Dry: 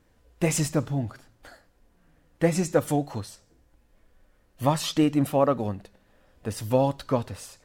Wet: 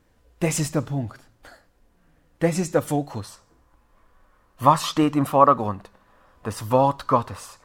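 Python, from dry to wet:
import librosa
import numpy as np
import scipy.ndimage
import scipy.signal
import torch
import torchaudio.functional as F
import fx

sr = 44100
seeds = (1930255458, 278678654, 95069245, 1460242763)

y = fx.peak_eq(x, sr, hz=1100.0, db=fx.steps((0.0, 2.0), (3.24, 15.0)), octaves=0.71)
y = F.gain(torch.from_numpy(y), 1.0).numpy()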